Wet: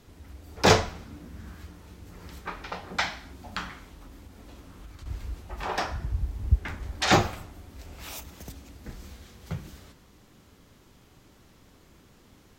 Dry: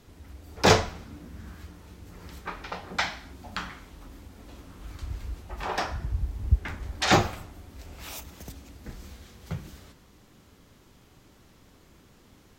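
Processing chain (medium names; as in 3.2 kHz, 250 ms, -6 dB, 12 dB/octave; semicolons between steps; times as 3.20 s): 3.84–5.06 s: compression 5:1, threshold -42 dBFS, peak gain reduction 10.5 dB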